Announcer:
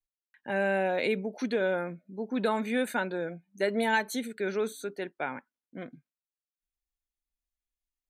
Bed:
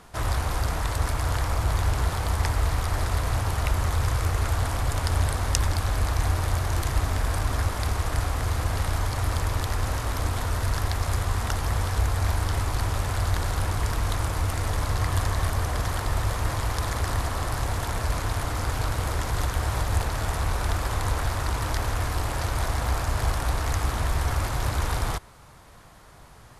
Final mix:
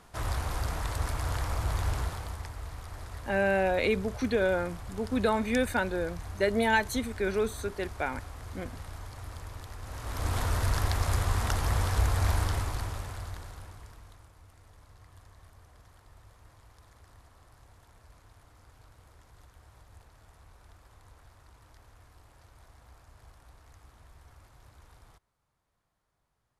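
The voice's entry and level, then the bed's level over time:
2.80 s, +1.5 dB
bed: 1.96 s -6 dB
2.49 s -16.5 dB
9.81 s -16.5 dB
10.35 s -2 dB
12.4 s -2 dB
14.33 s -30 dB

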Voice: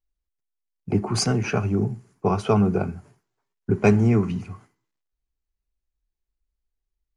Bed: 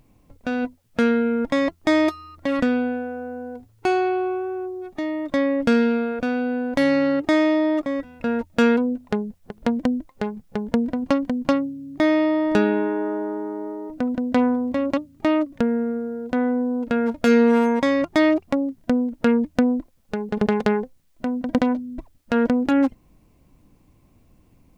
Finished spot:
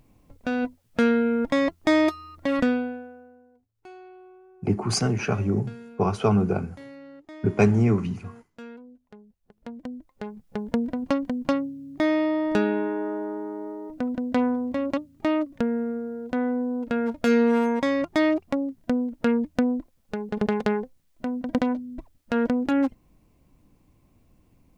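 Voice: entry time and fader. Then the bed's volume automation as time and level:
3.75 s, -1.5 dB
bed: 2.69 s -1.5 dB
3.51 s -25 dB
9.15 s -25 dB
10.59 s -4 dB

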